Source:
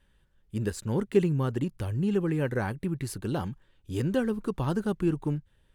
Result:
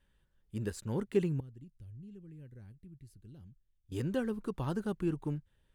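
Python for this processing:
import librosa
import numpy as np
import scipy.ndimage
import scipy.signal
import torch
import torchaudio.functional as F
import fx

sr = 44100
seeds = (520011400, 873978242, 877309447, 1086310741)

y = fx.tone_stack(x, sr, knobs='10-0-1', at=(1.4, 3.92))
y = y * 10.0 ** (-6.5 / 20.0)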